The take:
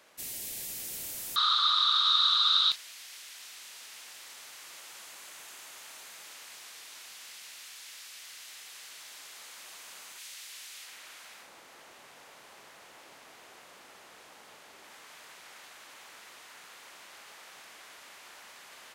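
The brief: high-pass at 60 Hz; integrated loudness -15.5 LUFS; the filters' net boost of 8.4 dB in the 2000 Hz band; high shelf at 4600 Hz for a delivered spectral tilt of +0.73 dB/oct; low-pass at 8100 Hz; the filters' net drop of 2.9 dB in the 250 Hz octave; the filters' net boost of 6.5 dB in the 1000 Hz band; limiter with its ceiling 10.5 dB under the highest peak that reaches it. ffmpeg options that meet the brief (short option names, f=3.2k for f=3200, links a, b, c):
-af "highpass=60,lowpass=8.1k,equalizer=f=250:t=o:g=-4.5,equalizer=f=1k:t=o:g=4.5,equalizer=f=2k:t=o:g=8.5,highshelf=f=4.6k:g=6.5,volume=16.5dB,alimiter=limit=0dB:level=0:latency=1"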